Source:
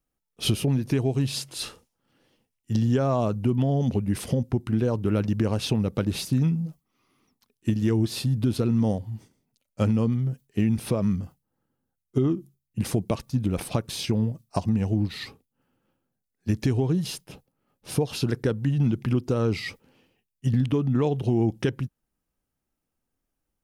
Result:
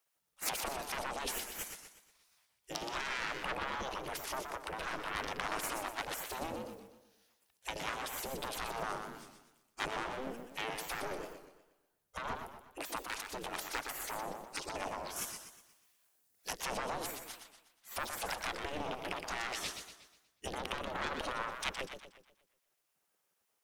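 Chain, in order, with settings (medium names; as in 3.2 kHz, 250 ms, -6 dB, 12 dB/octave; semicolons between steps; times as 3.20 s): one-sided wavefolder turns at -18.5 dBFS; 3.26–3.74 s: peaking EQ 380 Hz +11.5 dB 0.42 oct; saturation -25.5 dBFS, distortion -10 dB; 15.16–16.53 s: treble shelf 4.4 kHz +12 dB; spectral gate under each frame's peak -20 dB weak; modulated delay 121 ms, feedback 44%, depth 183 cents, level -6.5 dB; trim +6 dB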